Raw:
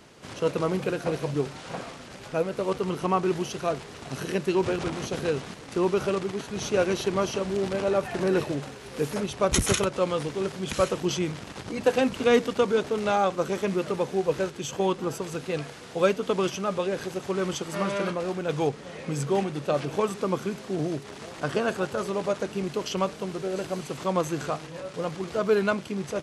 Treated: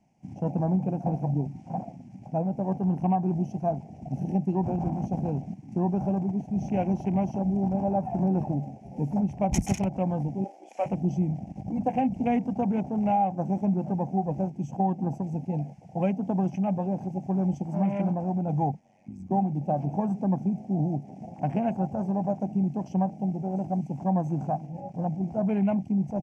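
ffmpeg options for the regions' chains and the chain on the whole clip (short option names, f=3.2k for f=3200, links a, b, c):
-filter_complex "[0:a]asettb=1/sr,asplit=3[a][b][c];[a]atrim=end=10.444[d];[b]atrim=start=10.44:end=10.86,asetpts=PTS-STARTPTS,afade=t=in:d=0.004:c=qsin,afade=t=out:st=0.416:d=0.004:c=qsin,highpass=f=470:w=0.5412,highpass=f=470:w=1.3066,asplit=2[e][f];[f]adelay=35,volume=-8.5dB[g];[e][g]amix=inputs=2:normalize=0,atrim=end_sample=18522[h];[c]atrim=start=10.856[i];[d][h]acrossfade=d=0.004:c1=hsin:c2=qsin[j];[j][i]acrossfade=d=0.004:c1=qsin:c2=hsin,asettb=1/sr,asplit=3[k][l][m];[k]atrim=end=18.794[n];[l]atrim=start=18.79:end=19.31,asetpts=PTS-STARTPTS,afade=t=in:d=0.004:c=qsin,afade=t=out:st=0.516:d=0.004:c=qsin,lowshelf=f=210:g=-12,acompressor=threshold=-37dB:ratio=3:attack=3.2:release=140:knee=1:detection=peak,aeval=exprs='val(0)*sin(2*PI*48*n/s)':c=same[o];[m]atrim=start=19.306[p];[n][o]acrossfade=d=0.004:c1=hsin:c2=qsin[q];[q][p]acrossfade=d=0.004:c1=qsin:c2=hsin,afwtdn=0.0224,firequalizer=gain_entry='entry(100,0);entry(190,7);entry(440,-16);entry(770,7);entry(1200,-25);entry(2300,-6);entry(3800,-24);entry(5600,-6);entry(9800,-14)':delay=0.05:min_phase=1,acompressor=threshold=-23dB:ratio=5,volume=2.5dB"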